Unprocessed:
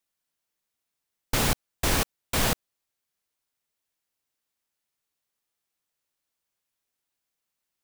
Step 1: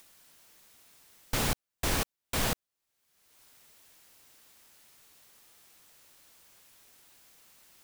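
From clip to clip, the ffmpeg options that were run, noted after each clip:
-af "acompressor=mode=upward:threshold=0.0282:ratio=2.5,volume=0.562"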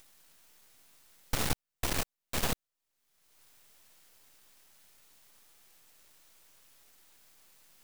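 -af "aeval=exprs='max(val(0),0)':c=same,volume=1.19"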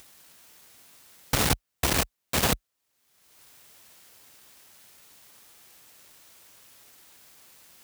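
-af "highpass=f=41:w=0.5412,highpass=f=41:w=1.3066,volume=2.66"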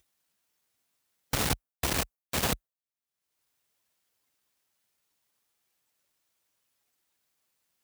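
-af "afftdn=nr=19:nf=-50,volume=0.596"

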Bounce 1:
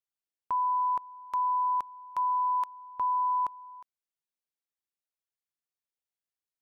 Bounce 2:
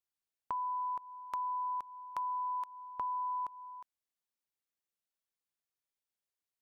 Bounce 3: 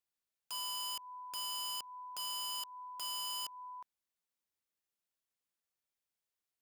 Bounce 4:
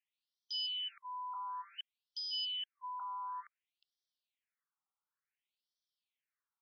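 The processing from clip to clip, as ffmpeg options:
-af "acompressor=threshold=0.02:ratio=6,volume=0.891"
-af "aeval=exprs='(mod(63.1*val(0)+1,2)-1)/63.1':c=same"
-af "afftfilt=real='re*between(b*sr/1024,990*pow(4400/990,0.5+0.5*sin(2*PI*0.56*pts/sr))/1.41,990*pow(4400/990,0.5+0.5*sin(2*PI*0.56*pts/sr))*1.41)':imag='im*between(b*sr/1024,990*pow(4400/990,0.5+0.5*sin(2*PI*0.56*pts/sr))/1.41,990*pow(4400/990,0.5+0.5*sin(2*PI*0.56*pts/sr))*1.41)':win_size=1024:overlap=0.75,volume=1.88"

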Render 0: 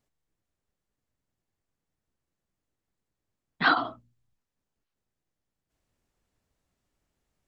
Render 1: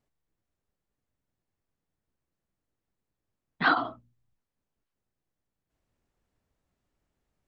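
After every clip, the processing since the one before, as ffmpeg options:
-af "highshelf=f=3200:g=-7"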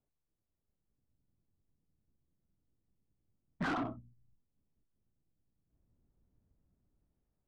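-filter_complex "[0:a]acrossover=split=310[s0][s1];[s0]dynaudnorm=f=330:g=5:m=3.76[s2];[s2][s1]amix=inputs=2:normalize=0,volume=20,asoftclip=hard,volume=0.0501,adynamicsmooth=sensitivity=1.5:basefreq=1300,volume=0.562"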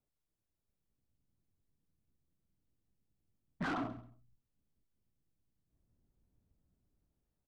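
-af "aecho=1:1:134|268:0.158|0.0285,volume=0.794"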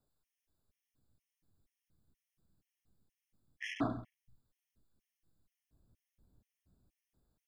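-af "afftfilt=real='re*gt(sin(2*PI*2.1*pts/sr)*(1-2*mod(floor(b*sr/1024/1700),2)),0)':imag='im*gt(sin(2*PI*2.1*pts/sr)*(1-2*mod(floor(b*sr/1024/1700),2)),0)':win_size=1024:overlap=0.75,volume=2.11"

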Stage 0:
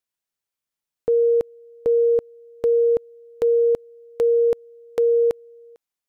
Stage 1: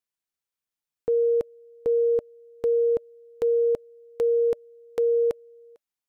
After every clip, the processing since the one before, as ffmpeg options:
-af "bandreject=f=590:w=12,volume=0.631"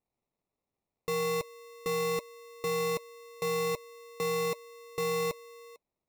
-af "acrusher=samples=28:mix=1:aa=0.000001,asoftclip=type=tanh:threshold=0.0355"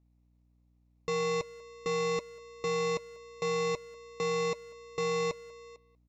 -filter_complex "[0:a]aeval=exprs='val(0)+0.000501*(sin(2*PI*60*n/s)+sin(2*PI*2*60*n/s)/2+sin(2*PI*3*60*n/s)/3+sin(2*PI*4*60*n/s)/4+sin(2*PI*5*60*n/s)/5)':c=same,aresample=16000,aresample=44100,asplit=2[s0][s1];[s1]adelay=190,highpass=300,lowpass=3400,asoftclip=type=hard:threshold=0.0158,volume=0.141[s2];[s0][s2]amix=inputs=2:normalize=0"

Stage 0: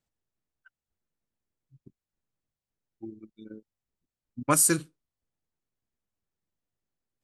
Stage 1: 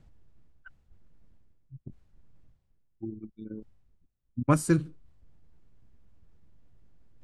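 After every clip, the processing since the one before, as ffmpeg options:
-af "aemphasis=mode=reproduction:type=riaa,areverse,acompressor=mode=upward:threshold=0.0178:ratio=2.5,areverse,volume=0.75"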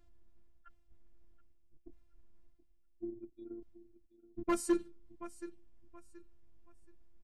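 -af "afftfilt=real='hypot(re,im)*cos(PI*b)':imag='0':win_size=512:overlap=0.75,aecho=1:1:726|1452|2178:0.141|0.0396|0.0111,asoftclip=type=hard:threshold=0.1,volume=0.75"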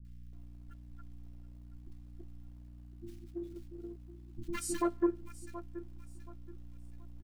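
-filter_complex "[0:a]aeval=exprs='val(0)+0.00224*(sin(2*PI*60*n/s)+sin(2*PI*2*60*n/s)/2+sin(2*PI*3*60*n/s)/3+sin(2*PI*4*60*n/s)/4+sin(2*PI*5*60*n/s)/5)':c=same,asplit=2[s0][s1];[s1]acrusher=bits=4:mode=log:mix=0:aa=0.000001,volume=0.501[s2];[s0][s2]amix=inputs=2:normalize=0,acrossover=split=260|1500[s3][s4][s5];[s5]adelay=50[s6];[s4]adelay=330[s7];[s3][s7][s6]amix=inputs=3:normalize=0"

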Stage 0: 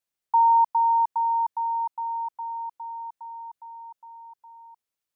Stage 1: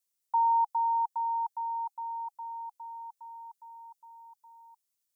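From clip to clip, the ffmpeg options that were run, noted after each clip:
-af "bass=f=250:g=1,treble=f=4000:g=13,bandreject=f=820:w=12,volume=0.473"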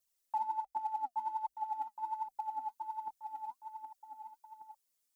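-af "acompressor=threshold=0.0126:ratio=6,afreqshift=-50,aphaser=in_gain=1:out_gain=1:delay=4.9:decay=0.65:speed=1.3:type=triangular,volume=0.891"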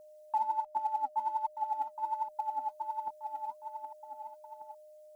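-af "aeval=exprs='val(0)+0.00158*sin(2*PI*610*n/s)':c=same,volume=1.58"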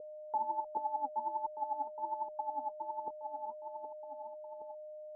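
-af "lowpass=f=480:t=q:w=4.9,volume=1.5"

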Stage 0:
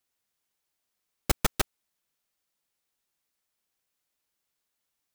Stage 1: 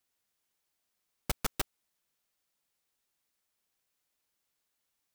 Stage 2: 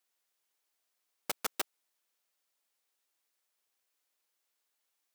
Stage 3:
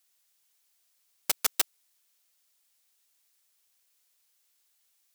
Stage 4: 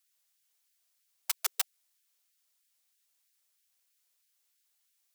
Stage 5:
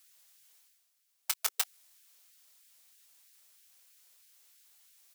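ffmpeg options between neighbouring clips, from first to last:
-af "asoftclip=type=hard:threshold=0.0531"
-af "highpass=360"
-af "highshelf=f=2200:g=11.5"
-af "afftfilt=real='re*gte(b*sr/1024,240*pow(1500/240,0.5+0.5*sin(2*PI*3.1*pts/sr)))':imag='im*gte(b*sr/1024,240*pow(1500/240,0.5+0.5*sin(2*PI*3.1*pts/sr)))':win_size=1024:overlap=0.75,volume=0.596"
-filter_complex "[0:a]areverse,acompressor=mode=upward:threshold=0.00282:ratio=2.5,areverse,asplit=2[s0][s1];[s1]adelay=22,volume=0.224[s2];[s0][s2]amix=inputs=2:normalize=0"

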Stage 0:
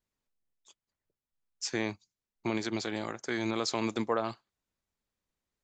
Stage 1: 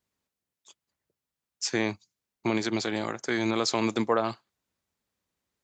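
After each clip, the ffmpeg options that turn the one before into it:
-af "highpass=69,volume=1.78"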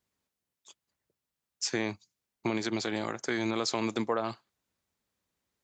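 -af "acompressor=threshold=0.0355:ratio=2"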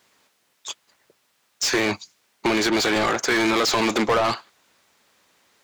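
-filter_complex "[0:a]asplit=2[s0][s1];[s1]highpass=f=720:p=1,volume=25.1,asoftclip=type=tanh:threshold=0.158[s2];[s0][s2]amix=inputs=2:normalize=0,lowpass=f=4500:p=1,volume=0.501,volume=1.58"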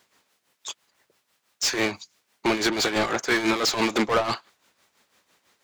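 -af "tremolo=f=6:d=0.67"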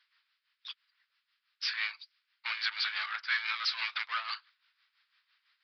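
-af "asuperpass=centerf=3200:order=8:qfactor=0.52,aresample=11025,aresample=44100,volume=0.531"

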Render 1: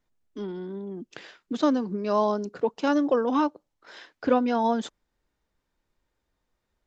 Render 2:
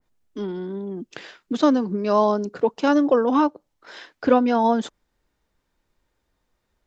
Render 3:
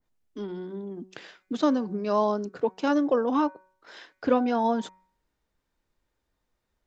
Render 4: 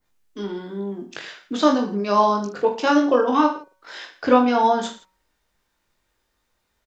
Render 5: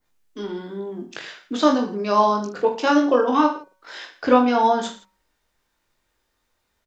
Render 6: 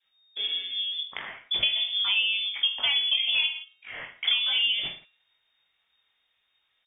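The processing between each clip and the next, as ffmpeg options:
-af "adynamicequalizer=threshold=0.0112:dfrequency=1800:dqfactor=0.7:tfrequency=1800:tqfactor=0.7:attack=5:release=100:ratio=0.375:range=2:mode=cutabove:tftype=highshelf,volume=1.78"
-af "bandreject=f=187.2:t=h:w=4,bandreject=f=374.4:t=h:w=4,bandreject=f=561.6:t=h:w=4,bandreject=f=748.8:t=h:w=4,bandreject=f=936:t=h:w=4,bandreject=f=1123.2:t=h:w=4,bandreject=f=1310.4:t=h:w=4,bandreject=f=1497.6:t=h:w=4,bandreject=f=1684.8:t=h:w=4,bandreject=f=1872:t=h:w=4,bandreject=f=2059.2:t=h:w=4,bandreject=f=2246.4:t=h:w=4,bandreject=f=2433.6:t=h:w=4,volume=0.531"
-af "tiltshelf=f=680:g=-4,aecho=1:1:20|45|76.25|115.3|164.1:0.631|0.398|0.251|0.158|0.1,volume=1.78"
-af "bandreject=f=50:t=h:w=6,bandreject=f=100:t=h:w=6,bandreject=f=150:t=h:w=6,bandreject=f=200:t=h:w=6"
-af "acompressor=threshold=0.0891:ratio=16,lowpass=f=3100:t=q:w=0.5098,lowpass=f=3100:t=q:w=0.6013,lowpass=f=3100:t=q:w=0.9,lowpass=f=3100:t=q:w=2.563,afreqshift=-3700"

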